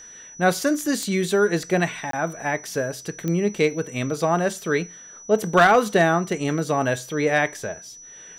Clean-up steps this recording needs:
clipped peaks rebuilt −8.5 dBFS
click removal
notch filter 5,900 Hz, Q 30
repair the gap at 0:02.11, 23 ms

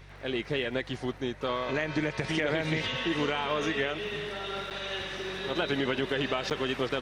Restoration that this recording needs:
click removal
hum removal 48.3 Hz, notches 3
repair the gap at 0:04.70/0:06.50, 8.3 ms

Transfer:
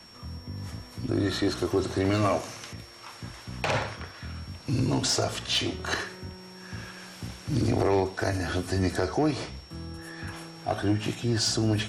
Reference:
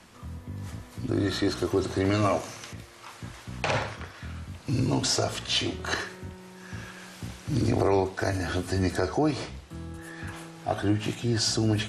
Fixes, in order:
clipped peaks rebuilt −17.5 dBFS
notch filter 5,500 Hz, Q 30

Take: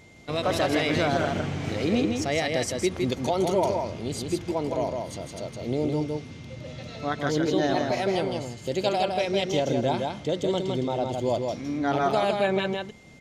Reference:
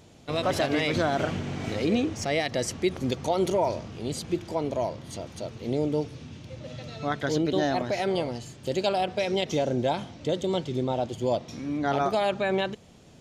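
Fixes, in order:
notch filter 2,100 Hz, Q 30
echo removal 161 ms −4 dB

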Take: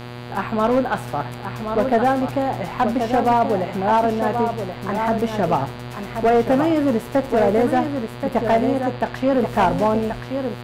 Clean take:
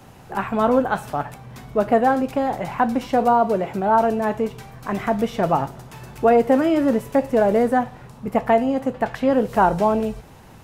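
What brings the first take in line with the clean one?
clipped peaks rebuilt −11 dBFS
hum removal 121.3 Hz, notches 40
echo removal 1,079 ms −7 dB

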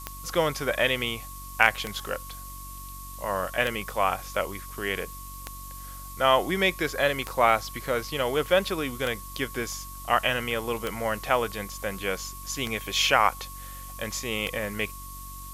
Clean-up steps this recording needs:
click removal
hum removal 47.2 Hz, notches 7
notch filter 1,100 Hz, Q 30
noise reduction from a noise print 30 dB

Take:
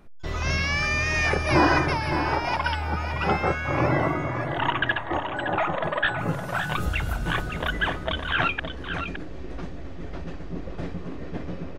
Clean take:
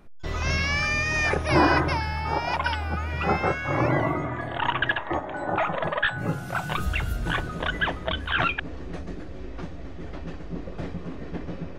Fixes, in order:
echo removal 565 ms −8 dB

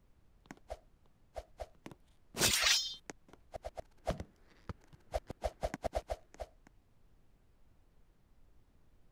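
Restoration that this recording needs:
noise reduction from a noise print 15 dB

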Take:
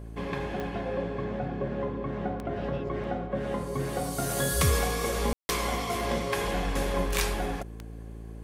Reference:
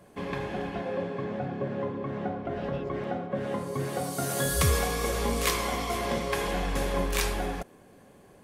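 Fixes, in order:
click removal
hum removal 55.7 Hz, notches 8
ambience match 0:05.33–0:05.49

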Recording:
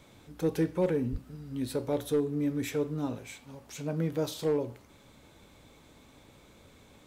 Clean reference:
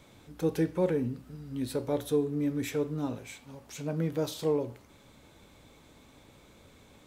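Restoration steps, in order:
clipped peaks rebuilt −20 dBFS
0:01.11–0:01.23: high-pass filter 140 Hz 24 dB per octave

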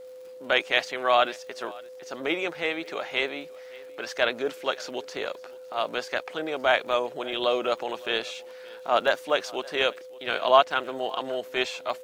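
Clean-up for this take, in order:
click removal
notch filter 510 Hz, Q 30
echo removal 569 ms −23 dB

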